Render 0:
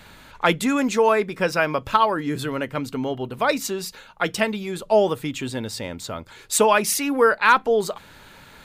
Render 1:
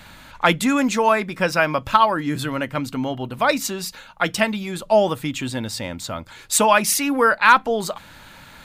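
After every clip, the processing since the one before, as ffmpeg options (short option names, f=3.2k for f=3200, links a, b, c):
-af "equalizer=f=420:w=4.5:g=-10.5,volume=3dB"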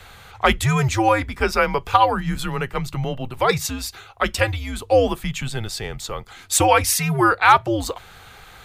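-af "afreqshift=-120"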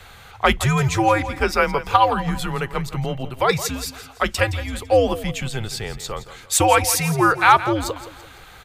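-af "aecho=1:1:168|336|504|672:0.2|0.0798|0.0319|0.0128"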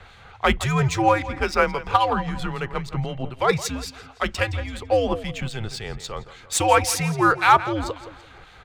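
-filter_complex "[0:a]acrossover=split=2200[a][b];[a]aeval=exprs='val(0)*(1-0.5/2+0.5/2*cos(2*PI*3.7*n/s))':c=same[c];[b]aeval=exprs='val(0)*(1-0.5/2-0.5/2*cos(2*PI*3.7*n/s))':c=same[d];[c][d]amix=inputs=2:normalize=0,adynamicsmooth=sensitivity=4:basefreq=5.1k"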